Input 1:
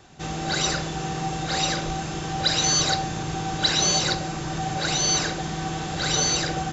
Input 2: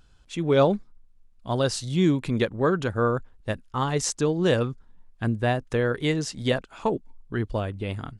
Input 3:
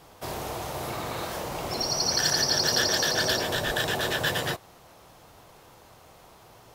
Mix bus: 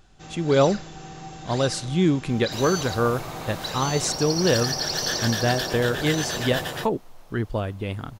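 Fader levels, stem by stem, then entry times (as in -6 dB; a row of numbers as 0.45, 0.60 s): -11.0, +1.0, -3.0 dB; 0.00, 0.00, 2.30 s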